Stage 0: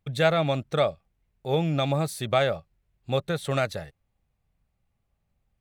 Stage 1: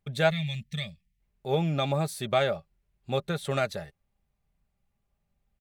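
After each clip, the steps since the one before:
gain on a spectral selection 0:00.30–0:01.20, 220–1,700 Hz −24 dB
comb filter 5 ms, depth 36%
level −2.5 dB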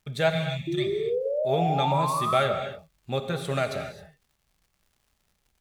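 surface crackle 170 per second −54 dBFS
sound drawn into the spectrogram rise, 0:00.67–0:02.42, 330–1,400 Hz −28 dBFS
reverb whose tail is shaped and stops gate 290 ms flat, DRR 5.5 dB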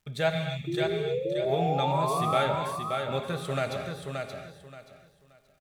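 repeating echo 577 ms, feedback 24%, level −5 dB
level −3 dB

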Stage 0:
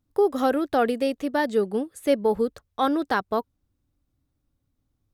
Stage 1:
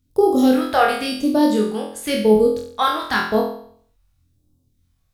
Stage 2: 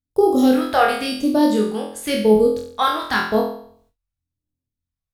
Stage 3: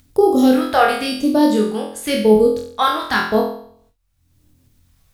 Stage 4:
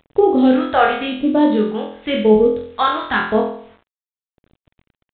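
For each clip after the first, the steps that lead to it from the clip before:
all-pass phaser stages 2, 0.94 Hz, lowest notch 260–1,900 Hz; flutter between parallel walls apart 4 metres, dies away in 0.57 s; level +7 dB
noise gate with hold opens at −49 dBFS
upward compression, threshold −35 dBFS; level +2 dB
bit reduction 8 bits; G.726 32 kbit/s 8,000 Hz

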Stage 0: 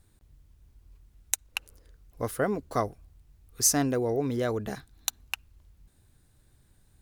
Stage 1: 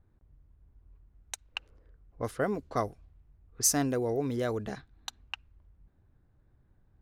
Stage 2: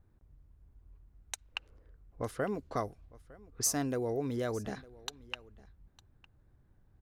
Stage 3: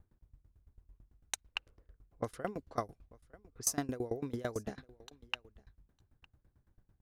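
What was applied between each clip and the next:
low-pass that shuts in the quiet parts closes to 1,300 Hz, open at −25 dBFS; level −2.5 dB
downward compressor 1.5 to 1, threshold −36 dBFS, peak gain reduction 5.5 dB; single-tap delay 906 ms −22 dB
tremolo with a ramp in dB decaying 9 Hz, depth 23 dB; level +3 dB

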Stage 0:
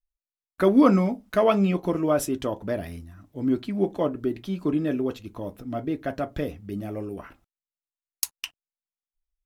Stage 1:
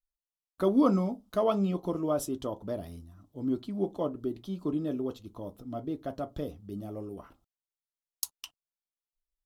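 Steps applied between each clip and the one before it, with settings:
flat-topped bell 2,000 Hz −10.5 dB 1 octave
level −6.5 dB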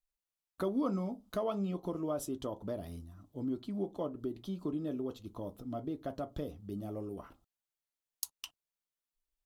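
notch filter 5,400 Hz, Q 30
downward compressor 2 to 1, threshold −37 dBFS, peak gain reduction 10 dB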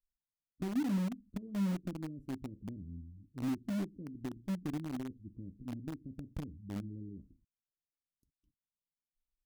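inverse Chebyshev low-pass filter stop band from 710 Hz, stop band 50 dB
in parallel at −7.5 dB: bit-depth reduction 6 bits, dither none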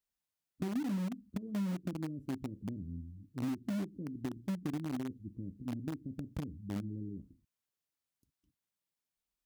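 high-pass filter 69 Hz
downward compressor, threshold −36 dBFS, peak gain reduction 8 dB
level +4 dB

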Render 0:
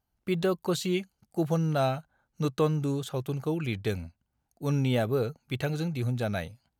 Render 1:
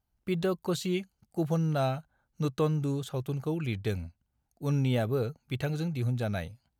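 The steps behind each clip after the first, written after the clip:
low-shelf EQ 120 Hz +6.5 dB
level −3 dB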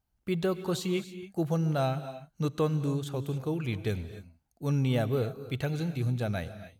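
reverb whose tail is shaped and stops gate 310 ms rising, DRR 12 dB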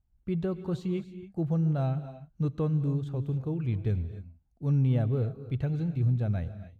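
RIAA equalisation playback
level −7.5 dB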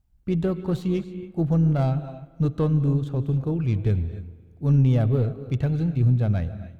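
stylus tracing distortion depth 0.059 ms
spring reverb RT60 2.4 s, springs 36/49 ms, chirp 50 ms, DRR 18.5 dB
amplitude modulation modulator 120 Hz, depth 15%
level +7.5 dB

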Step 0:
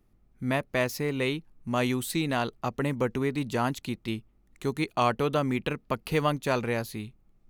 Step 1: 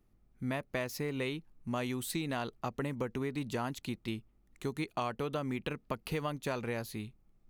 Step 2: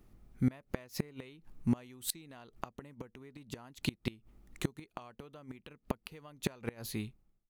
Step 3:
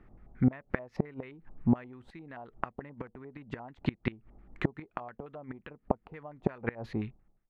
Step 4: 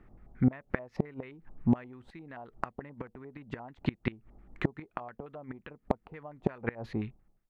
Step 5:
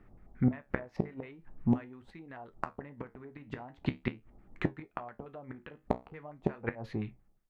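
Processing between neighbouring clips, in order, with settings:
downward compressor, threshold −27 dBFS, peak gain reduction 8 dB; level −4 dB
fade-out on the ending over 1.06 s; gate with flip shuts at −27 dBFS, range −26 dB; level +9 dB
auto-filter low-pass square 5.7 Hz 770–1,800 Hz; level +4 dB
hard clipping −13 dBFS, distortion −31 dB
flanger 0.44 Hz, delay 9.7 ms, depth 8.8 ms, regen −63%; level +3 dB

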